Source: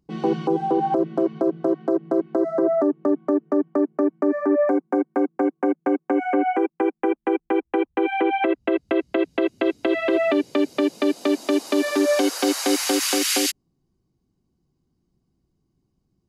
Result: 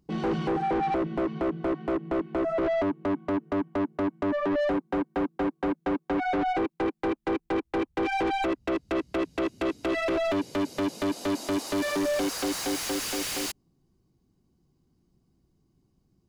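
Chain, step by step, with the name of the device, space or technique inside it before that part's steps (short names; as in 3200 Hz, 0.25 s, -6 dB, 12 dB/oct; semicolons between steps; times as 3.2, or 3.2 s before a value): saturation between pre-emphasis and de-emphasis (high shelf 2900 Hz +10.5 dB; soft clip -26 dBFS, distortion -6 dB; high shelf 2900 Hz -10.5 dB); gain +2.5 dB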